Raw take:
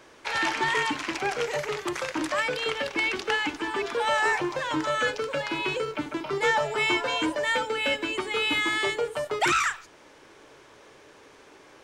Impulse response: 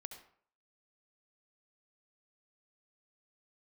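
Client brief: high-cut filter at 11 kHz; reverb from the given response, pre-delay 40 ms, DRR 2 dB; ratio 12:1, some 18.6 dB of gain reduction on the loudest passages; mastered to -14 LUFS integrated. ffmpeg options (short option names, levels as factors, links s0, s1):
-filter_complex "[0:a]lowpass=11000,acompressor=threshold=0.0112:ratio=12,asplit=2[s0][s1];[1:a]atrim=start_sample=2205,adelay=40[s2];[s1][s2]afir=irnorm=-1:irlink=0,volume=1.33[s3];[s0][s3]amix=inputs=2:normalize=0,volume=20"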